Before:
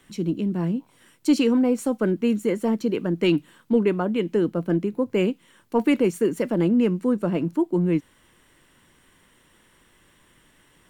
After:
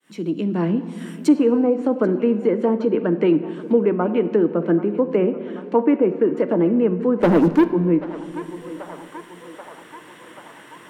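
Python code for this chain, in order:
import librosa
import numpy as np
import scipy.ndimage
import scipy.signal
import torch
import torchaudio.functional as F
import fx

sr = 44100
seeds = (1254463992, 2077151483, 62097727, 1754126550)

p1 = fx.fade_in_head(x, sr, length_s=0.84)
p2 = fx.lowpass(p1, sr, hz=3000.0, slope=12, at=(5.18, 6.37))
p3 = fx.env_lowpass_down(p2, sr, base_hz=1300.0, full_db=-19.0)
p4 = scipy.signal.sosfilt(scipy.signal.butter(2, 240.0, 'highpass', fs=sr, output='sos'), p3)
p5 = fx.rider(p4, sr, range_db=10, speed_s=0.5)
p6 = p4 + F.gain(torch.from_numpy(p5), -2.0).numpy()
p7 = fx.leveller(p6, sr, passes=3, at=(7.19, 7.68))
p8 = p7 + fx.echo_banded(p7, sr, ms=784, feedback_pct=59, hz=1100.0, wet_db=-16, dry=0)
p9 = fx.room_shoebox(p8, sr, seeds[0], volume_m3=1800.0, walls='mixed', distance_m=0.53)
y = fx.band_squash(p9, sr, depth_pct=40)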